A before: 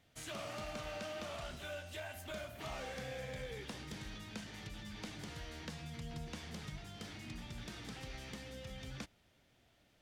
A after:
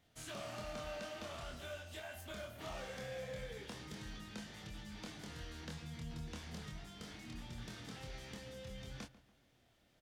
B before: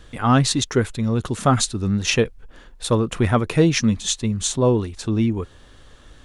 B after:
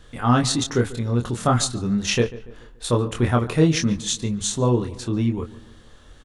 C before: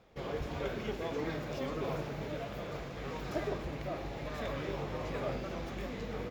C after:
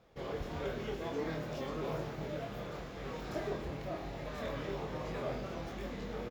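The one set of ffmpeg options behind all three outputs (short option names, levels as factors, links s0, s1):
-filter_complex "[0:a]equalizer=f=2400:t=o:w=0.41:g=-2.5,asplit=2[s0][s1];[s1]adelay=25,volume=0.631[s2];[s0][s2]amix=inputs=2:normalize=0,asplit=2[s3][s4];[s4]adelay=143,lowpass=f=2400:p=1,volume=0.141,asplit=2[s5][s6];[s6]adelay=143,lowpass=f=2400:p=1,volume=0.46,asplit=2[s7][s8];[s8]adelay=143,lowpass=f=2400:p=1,volume=0.46,asplit=2[s9][s10];[s10]adelay=143,lowpass=f=2400:p=1,volume=0.46[s11];[s3][s5][s7][s9][s11]amix=inputs=5:normalize=0,volume=0.708"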